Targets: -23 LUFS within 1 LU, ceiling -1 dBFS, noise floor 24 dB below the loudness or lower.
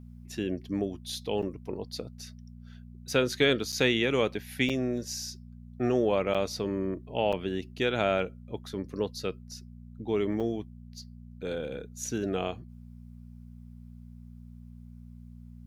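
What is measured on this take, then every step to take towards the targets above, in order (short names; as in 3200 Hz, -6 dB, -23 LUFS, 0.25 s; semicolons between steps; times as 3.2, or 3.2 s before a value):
dropouts 6; longest dropout 6.6 ms; hum 60 Hz; harmonics up to 240 Hz; hum level -44 dBFS; loudness -30.5 LUFS; peak -10.5 dBFS; loudness target -23.0 LUFS
-> interpolate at 1.42/3.72/4.69/6.34/7.32/10.4, 6.6 ms; de-hum 60 Hz, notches 4; gain +7.5 dB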